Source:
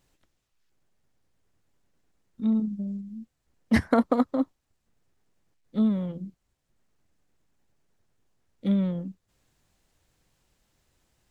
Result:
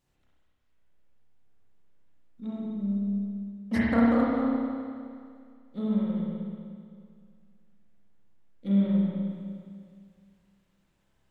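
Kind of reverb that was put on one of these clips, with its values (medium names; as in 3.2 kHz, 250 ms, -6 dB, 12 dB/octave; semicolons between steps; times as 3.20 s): spring tank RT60 2.2 s, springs 30/51 ms, chirp 50 ms, DRR -7.5 dB; trim -9 dB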